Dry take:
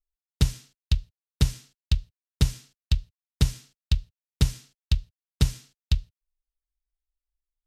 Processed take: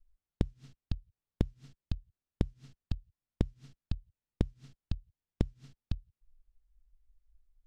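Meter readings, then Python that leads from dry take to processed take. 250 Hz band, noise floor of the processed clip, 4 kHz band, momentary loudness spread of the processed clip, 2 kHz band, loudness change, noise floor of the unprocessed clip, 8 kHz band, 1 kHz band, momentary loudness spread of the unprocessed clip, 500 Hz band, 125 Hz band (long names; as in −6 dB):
−3.5 dB, below −85 dBFS, −21.0 dB, 5 LU, −15.0 dB, −11.5 dB, below −85 dBFS, below −25 dB, −7.0 dB, 13 LU, −1.0 dB, −11.5 dB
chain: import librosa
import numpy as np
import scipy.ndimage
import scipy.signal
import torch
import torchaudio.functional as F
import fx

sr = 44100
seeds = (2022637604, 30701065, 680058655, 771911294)

y = fx.wow_flutter(x, sr, seeds[0], rate_hz=2.1, depth_cents=15.0)
y = fx.gate_flip(y, sr, shuts_db=-26.0, range_db=-38)
y = fx.riaa(y, sr, side='playback')
y = y * librosa.db_to_amplitude(2.5)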